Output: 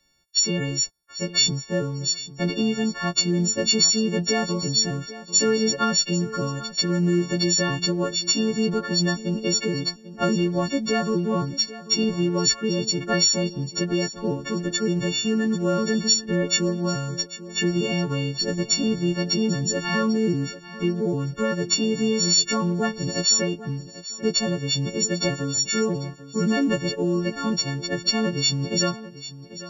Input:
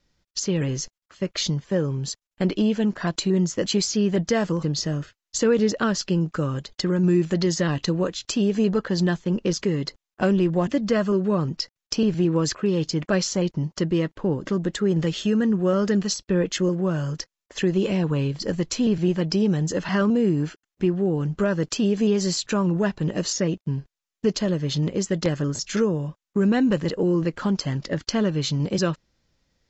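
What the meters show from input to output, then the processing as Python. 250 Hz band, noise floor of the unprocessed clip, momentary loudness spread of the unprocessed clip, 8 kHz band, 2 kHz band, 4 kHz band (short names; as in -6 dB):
-2.0 dB, under -85 dBFS, 7 LU, n/a, +3.5 dB, +8.5 dB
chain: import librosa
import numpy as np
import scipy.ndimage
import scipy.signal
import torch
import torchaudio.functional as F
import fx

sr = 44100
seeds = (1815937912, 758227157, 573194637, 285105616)

y = fx.freq_snap(x, sr, grid_st=4)
y = fx.echo_feedback(y, sr, ms=793, feedback_pct=25, wet_db=-15.5)
y = y * 10.0 ** (-2.0 / 20.0)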